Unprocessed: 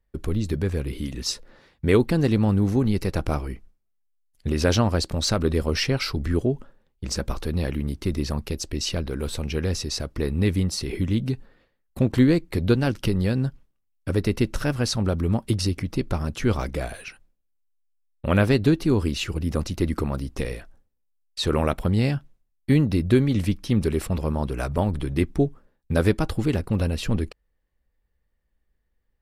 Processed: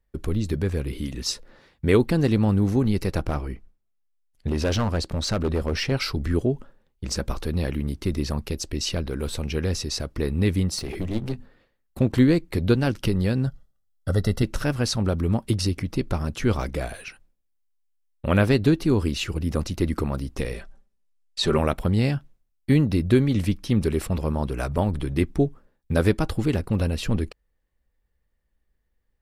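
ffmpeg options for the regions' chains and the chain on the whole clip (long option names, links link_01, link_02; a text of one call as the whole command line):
ffmpeg -i in.wav -filter_complex "[0:a]asettb=1/sr,asplit=3[link_01][link_02][link_03];[link_01]atrim=end=3.224[link_04];[link_02]atrim=start=3.22:end=5.92,asetpts=PTS-STARTPTS,afade=type=in:duration=0.004:curve=qsin,afade=type=out:start_time=2.696:duration=0.004:curve=qsin,highshelf=frequency=4000:gain=-6.5,asoftclip=type=hard:threshold=-18.5dB[link_05];[link_03]atrim=start=5.916[link_06];[link_04][link_05]acrossfade=duration=0.004:curve1=hsin:curve2=qsin[link_07];[link_07][link_06]acrossfade=duration=0.004:curve1=qsin:curve2=hsin,asettb=1/sr,asplit=3[link_08][link_09][link_10];[link_08]atrim=end=10.784[link_11];[link_09]atrim=start=10.78:end=12.01,asetpts=PTS-STARTPTS,afade=type=in:duration=0.004:curve=qsin,afade=type=out:start_time=1.226:duration=0.004:curve=qsin,bandreject=frequency=50:width_type=h:width=6,bandreject=frequency=100:width_type=h:width=6,bandreject=frequency=150:width_type=h:width=6,bandreject=frequency=200:width_type=h:width=6,bandreject=frequency=250:width_type=h:width=6,aeval=exprs='clip(val(0),-1,0.0224)':channel_layout=same[link_12];[link_10]atrim=start=12.006[link_13];[link_11][link_12]acrossfade=duration=0.004:curve1=hsin:curve2=qsin[link_14];[link_14][link_13]acrossfade=duration=0.004:curve1=qsin:curve2=hsin,asettb=1/sr,asplit=3[link_15][link_16][link_17];[link_15]atrim=end=13.474[link_18];[link_16]atrim=start=13.47:end=14.43,asetpts=PTS-STARTPTS,afade=type=in:duration=0.004:curve=qsin,afade=type=out:start_time=0.956:duration=0.004:curve=qsin,asuperstop=centerf=2400:order=4:qfactor=2.4,aecho=1:1:1.5:0.57,atrim=end_sample=42336[link_19];[link_17]atrim=start=14.426[link_20];[link_18][link_19]acrossfade=duration=0.004:curve1=hsin:curve2=qsin[link_21];[link_21][link_20]acrossfade=duration=0.004:curve1=qsin:curve2=hsin,asettb=1/sr,asplit=3[link_22][link_23][link_24];[link_22]atrim=end=20.544[link_25];[link_23]atrim=start=20.54:end=21.58,asetpts=PTS-STARTPTS,afade=type=in:duration=0.004:curve=qsin,afade=type=out:start_time=1.036:duration=0.004:curve=qsin,lowpass=10000,aecho=1:1:5.1:0.74,atrim=end_sample=45864[link_26];[link_24]atrim=start=21.576[link_27];[link_25][link_26]acrossfade=duration=0.004:curve1=hsin:curve2=qsin[link_28];[link_28][link_27]acrossfade=duration=0.004:curve1=qsin:curve2=hsin" out.wav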